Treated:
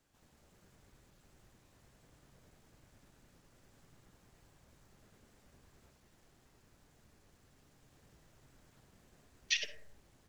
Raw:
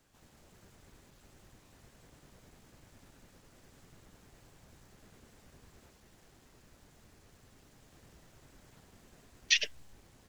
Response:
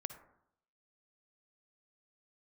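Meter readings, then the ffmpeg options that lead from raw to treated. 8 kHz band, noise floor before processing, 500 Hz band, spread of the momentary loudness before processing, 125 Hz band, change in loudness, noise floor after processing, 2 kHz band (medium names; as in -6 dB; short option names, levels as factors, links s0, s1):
-6.0 dB, -64 dBFS, -5.5 dB, 7 LU, -5.0 dB, -6.0 dB, -69 dBFS, -6.0 dB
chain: -filter_complex "[1:a]atrim=start_sample=2205[s0];[0:a][s0]afir=irnorm=-1:irlink=0,volume=0.668"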